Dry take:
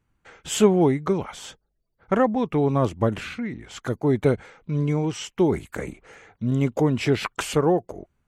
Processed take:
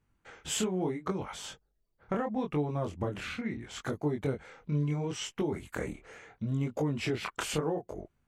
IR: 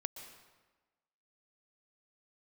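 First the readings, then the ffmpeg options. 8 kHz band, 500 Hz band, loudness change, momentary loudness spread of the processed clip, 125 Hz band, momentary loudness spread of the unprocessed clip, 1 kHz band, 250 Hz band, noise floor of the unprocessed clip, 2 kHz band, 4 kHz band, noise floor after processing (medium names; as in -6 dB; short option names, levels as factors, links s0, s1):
-5.0 dB, -12.0 dB, -10.5 dB, 9 LU, -9.0 dB, 14 LU, -10.5 dB, -10.5 dB, -73 dBFS, -7.0 dB, -5.0 dB, -76 dBFS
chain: -af "acompressor=threshold=0.0501:ratio=5,flanger=delay=20:depth=7.3:speed=0.74"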